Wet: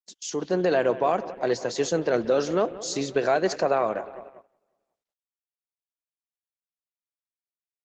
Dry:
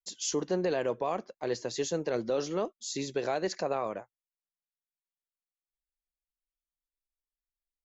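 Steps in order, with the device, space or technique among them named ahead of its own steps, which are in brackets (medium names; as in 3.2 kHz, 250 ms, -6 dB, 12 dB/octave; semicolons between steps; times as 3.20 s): peaking EQ 680 Hz +4 dB 0.24 oct; bucket-brigade echo 181 ms, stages 4096, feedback 68%, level -16 dB; gate -58 dBFS, range -41 dB; dynamic bell 1.5 kHz, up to +5 dB, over -53 dBFS, Q 4.1; video call (high-pass 110 Hz 12 dB/octave; level rider gain up to 7 dB; gate -40 dBFS, range -26 dB; Opus 16 kbps 48 kHz)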